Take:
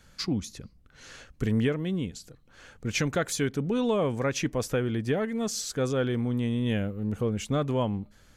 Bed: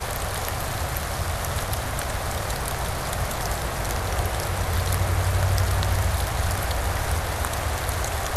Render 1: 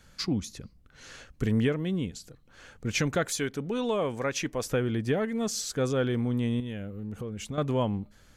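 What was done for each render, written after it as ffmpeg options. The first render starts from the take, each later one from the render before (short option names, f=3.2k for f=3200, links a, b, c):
-filter_complex "[0:a]asettb=1/sr,asplit=3[a][b][c];[a]atrim=end=3.284[d];[b]atrim=start=3.28:end=4.66,asetpts=PTS-STARTPTS,afade=t=in:d=0.004:c=qsin,afade=t=out:st=1.376:d=0.004:c=qsin,equalizer=f=90:w=0.31:g=-7[e];[c]atrim=start=4.656[f];[d][e]acrossfade=d=0.004:c1=hsin:c2=qsin[g];[g][f]acrossfade=d=0.004:c1=qsin:c2=hsin,asettb=1/sr,asplit=3[h][i][j];[h]atrim=end=6.604[k];[i]atrim=start=6.6:end=7.58,asetpts=PTS-STARTPTS,afade=t=in:d=0.004:c=qsin,afade=t=out:st=0.976:d=0.004:c=qsin,acompressor=threshold=-34dB:ratio=3:attack=3.2:release=140:knee=1:detection=peak[l];[j]atrim=start=7.576[m];[k][l]acrossfade=d=0.004:c1=hsin:c2=qsin[n];[n][m]acrossfade=d=0.004:c1=qsin:c2=hsin"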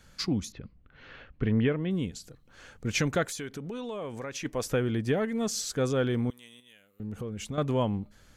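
-filter_complex "[0:a]asettb=1/sr,asplit=3[a][b][c];[a]atrim=end=0.524[d];[b]atrim=start=0.52:end=1.91,asetpts=PTS-STARTPTS,afade=t=in:d=0.004:c=qsin,afade=t=out:st=1.386:d=0.004:c=qsin,lowpass=f=3.2k:w=0.5412,lowpass=f=3.2k:w=1.3066[e];[c]atrim=start=1.906[f];[d][e]acrossfade=d=0.004:c1=hsin:c2=qsin[g];[g][f]acrossfade=d=0.004:c1=qsin:c2=hsin,asplit=3[h][i][j];[h]afade=t=out:st=3.25:d=0.02[k];[i]acompressor=threshold=-34dB:ratio=4:attack=3.2:release=140:knee=1:detection=peak,afade=t=in:st=3.25:d=0.02,afade=t=out:st=4.44:d=0.02[l];[j]afade=t=in:st=4.44:d=0.02[m];[k][l][m]amix=inputs=3:normalize=0,asettb=1/sr,asplit=3[n][o][p];[n]atrim=end=6.304[q];[o]atrim=start=6.3:end=7,asetpts=PTS-STARTPTS,afade=t=in:d=0.004:c=qsin,afade=t=out:st=0.696:d=0.004:c=qsin,aderivative[r];[p]atrim=start=6.996[s];[q][r]acrossfade=d=0.004:c1=hsin:c2=qsin[t];[t][s]acrossfade=d=0.004:c1=qsin:c2=hsin"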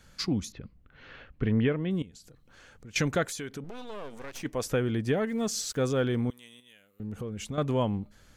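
-filter_complex "[0:a]asettb=1/sr,asplit=3[a][b][c];[a]atrim=end=2.024[d];[b]atrim=start=2.02:end=2.96,asetpts=PTS-STARTPTS,afade=t=in:d=0.004:c=qsin,afade=t=out:st=0.936:d=0.004:c=qsin,acompressor=threshold=-51dB:ratio=2.5:attack=3.2:release=140:knee=1:detection=peak[e];[c]atrim=start=2.956[f];[d][e]acrossfade=d=0.004:c1=hsin:c2=qsin[g];[g][f]acrossfade=d=0.004:c1=qsin:c2=hsin,asettb=1/sr,asplit=3[h][i][j];[h]atrim=end=3.644[k];[i]atrim=start=3.64:end=4.43,asetpts=PTS-STARTPTS,afade=t=in:d=0.004:c=qsin,afade=t=out:st=0.786:d=0.004:c=qsin,aeval=exprs='max(val(0),0)':c=same[l];[j]atrim=start=4.426[m];[k][l]acrossfade=d=0.004:c1=hsin:c2=qsin[n];[n][m]acrossfade=d=0.004:c1=qsin:c2=hsin,asettb=1/sr,asplit=3[o][p][q];[o]atrim=end=5.274[r];[p]atrim=start=5.27:end=6.03,asetpts=PTS-STARTPTS,afade=t=in:d=0.004:c=qsin,afade=t=out:st=0.756:d=0.004:c=qsin,aeval=exprs='val(0)*gte(abs(val(0)),0.00282)':c=same[s];[q]atrim=start=6.026[t];[r][s]acrossfade=d=0.004:c1=hsin:c2=qsin[u];[u][t]acrossfade=d=0.004:c1=qsin:c2=hsin"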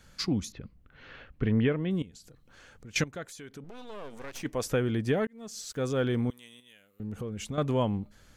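-filter_complex "[0:a]asplit=3[a][b][c];[a]atrim=end=3.04,asetpts=PTS-STARTPTS,afade=t=out:st=3.036:d=0.004:c=hsin:silence=0.141254[d];[b]atrim=start=3.04:end=5.27,asetpts=PTS-STARTPTS,afade=t=in:d=1.24:silence=0.141254,afade=t=out:st=2.226:d=0.004:c=hsin[e];[c]atrim=start=5.27,asetpts=PTS-STARTPTS,afade=t=in:d=0.82[f];[d][e][f]concat=n=3:v=0:a=1"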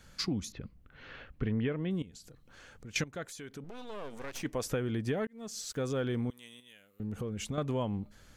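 -af "acompressor=threshold=-31dB:ratio=2.5"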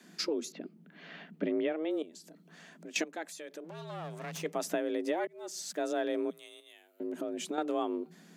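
-af "afreqshift=160"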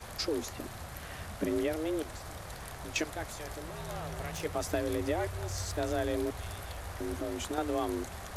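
-filter_complex "[1:a]volume=-16.5dB[a];[0:a][a]amix=inputs=2:normalize=0"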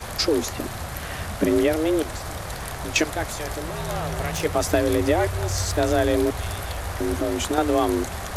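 -af "volume=11.5dB"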